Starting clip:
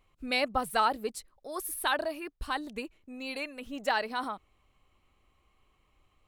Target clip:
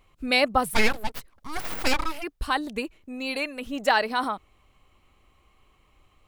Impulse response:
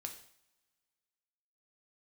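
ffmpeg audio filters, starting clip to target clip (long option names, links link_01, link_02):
-filter_complex "[0:a]asplit=3[link_01][link_02][link_03];[link_01]afade=type=out:start_time=0.73:duration=0.02[link_04];[link_02]aeval=exprs='abs(val(0))':channel_layout=same,afade=type=in:start_time=0.73:duration=0.02,afade=type=out:start_time=2.22:duration=0.02[link_05];[link_03]afade=type=in:start_time=2.22:duration=0.02[link_06];[link_04][link_05][link_06]amix=inputs=3:normalize=0,volume=7.5dB"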